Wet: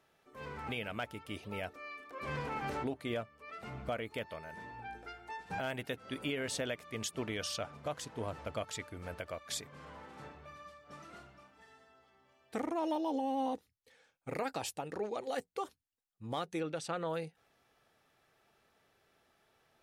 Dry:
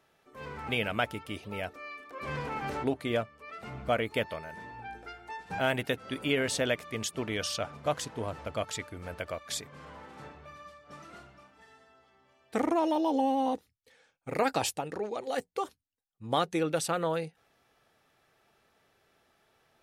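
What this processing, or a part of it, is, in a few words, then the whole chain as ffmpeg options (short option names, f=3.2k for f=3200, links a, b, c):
clipper into limiter: -filter_complex "[0:a]asettb=1/sr,asplit=3[a][b][c];[a]atrim=end=16.604[d];[b]atrim=start=16.6:end=17.08,asetpts=PTS-STARTPTS,afade=t=in:d=0.004:c=qsin,afade=t=out:st=0.476:d=0.004:c=qsin,lowpass=6.8k[e];[c]atrim=start=17.076[f];[d][e]acrossfade=d=0.004:c1=hsin:c2=qsin[g];[g][f]acrossfade=d=0.004:c1=qsin:c2=hsin,asoftclip=type=hard:threshold=-16.5dB,alimiter=limit=-23.5dB:level=0:latency=1:release=386,volume=-3dB"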